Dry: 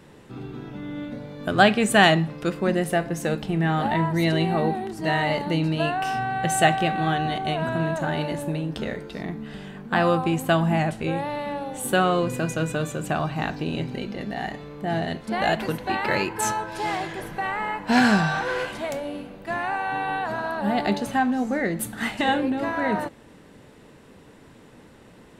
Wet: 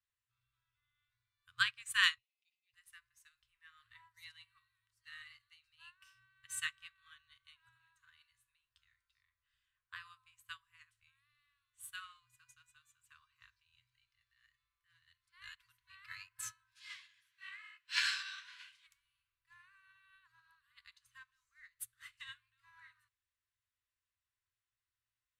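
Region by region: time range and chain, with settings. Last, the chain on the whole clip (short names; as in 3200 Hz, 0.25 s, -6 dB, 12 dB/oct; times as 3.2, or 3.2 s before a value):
2.18–2.74 steep high-pass 2200 Hz 72 dB/oct + air absorption 190 m
16.75–18.87 weighting filter D + detuned doubles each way 44 cents
whole clip: FFT band-reject 120–970 Hz; passive tone stack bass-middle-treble 5-5-5; upward expander 2.5:1, over -47 dBFS; gain +1.5 dB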